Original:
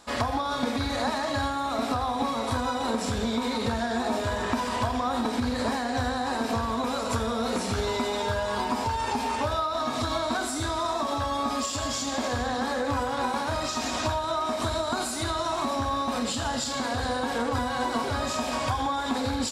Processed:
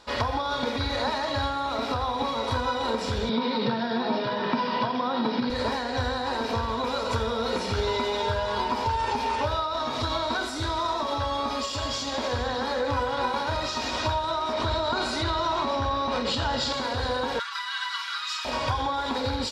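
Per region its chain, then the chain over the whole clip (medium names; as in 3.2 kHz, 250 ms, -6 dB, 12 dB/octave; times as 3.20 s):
3.29–5.50 s: Chebyshev band-pass 130–5300 Hz, order 5 + peaking EQ 180 Hz +8.5 dB 1.1 oct
14.53–16.73 s: distance through air 66 m + level flattener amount 70%
17.39–18.45 s: elliptic high-pass 1.2 kHz, stop band 60 dB + comb 5.1 ms, depth 89%
whole clip: resonant high shelf 6.2 kHz -9 dB, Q 1.5; comb 2.1 ms, depth 38%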